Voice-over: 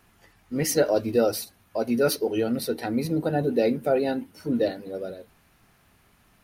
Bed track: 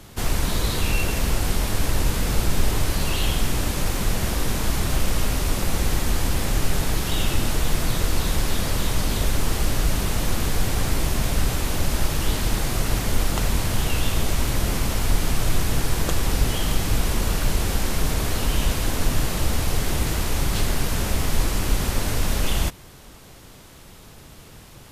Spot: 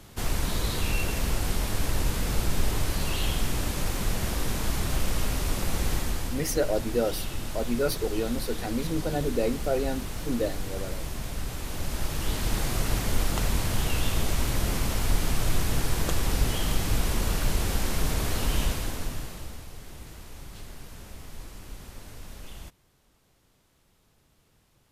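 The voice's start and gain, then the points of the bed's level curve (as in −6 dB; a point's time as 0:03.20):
5.80 s, −4.5 dB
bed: 0:05.95 −5 dB
0:06.44 −11.5 dB
0:11.45 −11.5 dB
0:12.60 −4 dB
0:18.61 −4 dB
0:19.70 −20.5 dB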